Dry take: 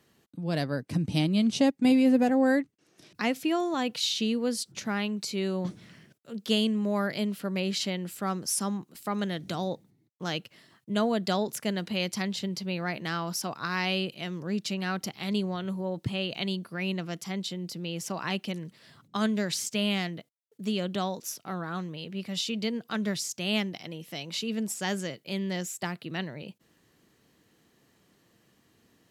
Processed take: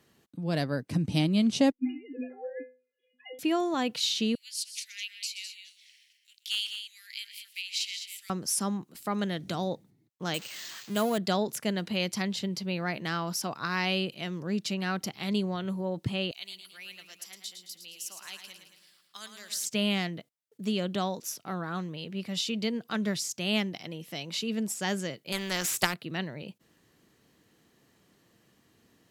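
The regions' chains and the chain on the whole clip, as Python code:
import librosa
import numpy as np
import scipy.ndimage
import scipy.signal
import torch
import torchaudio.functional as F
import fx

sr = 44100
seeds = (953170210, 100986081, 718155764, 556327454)

y = fx.chain(x, sr, fx.sine_speech(),
    fx.fixed_phaser(hz=2700.0, stages=4),
    fx.stiff_resonator(f0_hz=250.0, decay_s=0.38, stiffness=0.008), at=(1.72, 3.39))
y = fx.chain(y, sr, fx.steep_highpass(hz=2200.0, slope=48),
    fx.clip_hard(threshold_db=-22.0),
    fx.echo_multitap(ms=(125, 206), db=(-13.0, -8.5)), at=(4.35, 8.3))
y = fx.chain(y, sr, fx.crossing_spikes(level_db=-26.0),
    fx.low_shelf(hz=160.0, db=-8.0),
    fx.resample_bad(factor=4, down='filtered', up='hold'), at=(10.34, 11.18))
y = fx.chain(y, sr, fx.differentiator(),
    fx.echo_feedback(ms=110, feedback_pct=54, wet_db=-7.5), at=(16.31, 19.65))
y = fx.chain(y, sr, fx.dynamic_eq(hz=1500.0, q=1.2, threshold_db=-49.0, ratio=4.0, max_db=6),
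    fx.transient(attack_db=10, sustain_db=5),
    fx.spectral_comp(ratio=2.0), at=(25.32, 25.94))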